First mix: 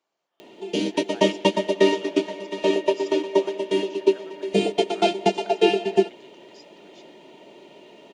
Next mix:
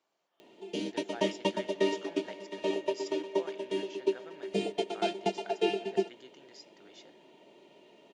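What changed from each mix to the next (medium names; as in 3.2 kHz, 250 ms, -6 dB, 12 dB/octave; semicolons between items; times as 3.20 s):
background -10.5 dB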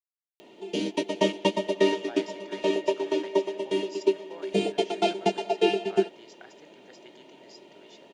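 speech: entry +0.95 s; background +6.0 dB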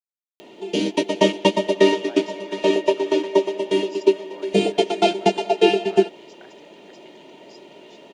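background +7.0 dB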